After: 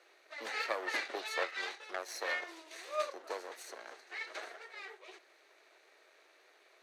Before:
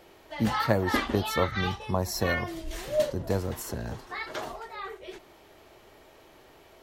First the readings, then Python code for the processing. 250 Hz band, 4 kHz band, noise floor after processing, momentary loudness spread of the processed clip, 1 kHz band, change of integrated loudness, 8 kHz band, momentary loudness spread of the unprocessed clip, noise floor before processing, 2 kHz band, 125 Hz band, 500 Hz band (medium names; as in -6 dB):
-24.0 dB, -7.0 dB, -66 dBFS, 14 LU, -10.0 dB, -10.0 dB, -9.0 dB, 13 LU, -56 dBFS, -4.5 dB, under -40 dB, -12.0 dB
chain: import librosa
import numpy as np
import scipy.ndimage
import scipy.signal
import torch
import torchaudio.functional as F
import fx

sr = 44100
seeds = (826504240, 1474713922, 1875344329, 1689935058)

y = fx.lower_of_two(x, sr, delay_ms=0.48)
y = scipy.signal.sosfilt(scipy.signal.bessel(8, 650.0, 'highpass', norm='mag', fs=sr, output='sos'), y)
y = fx.air_absorb(y, sr, metres=52.0)
y = F.gain(torch.from_numpy(y), -4.0).numpy()